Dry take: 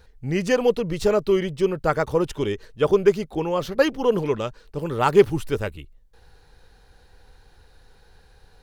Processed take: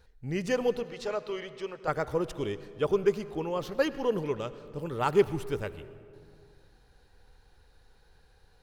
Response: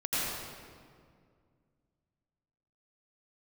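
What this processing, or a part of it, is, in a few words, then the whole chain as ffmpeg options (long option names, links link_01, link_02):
saturated reverb return: -filter_complex "[0:a]asettb=1/sr,asplit=3[link_01][link_02][link_03];[link_01]atrim=end=0.834[link_04];[link_02]atrim=start=0.83:end=1.88,asetpts=PTS-STARTPTS,afade=type=in:duration=0.004:curve=qsin,afade=type=out:start_time=1.046:duration=0.004:curve=qsin,acrossover=split=510 6900:gain=0.178 1 0.178[link_05][link_06][link_07];[link_05][link_06][link_07]amix=inputs=3:normalize=0[link_08];[link_03]atrim=start=1.876[link_09];[link_04][link_08]acrossfade=duration=0.004:curve1=hsin:curve2=qsin[link_10];[link_10][link_09]acrossfade=duration=0.004:curve1=qsin:curve2=hsin,asplit=2[link_11][link_12];[1:a]atrim=start_sample=2205[link_13];[link_12][link_13]afir=irnorm=-1:irlink=0,asoftclip=type=tanh:threshold=-7dB,volume=-21.5dB[link_14];[link_11][link_14]amix=inputs=2:normalize=0,volume=-8.5dB"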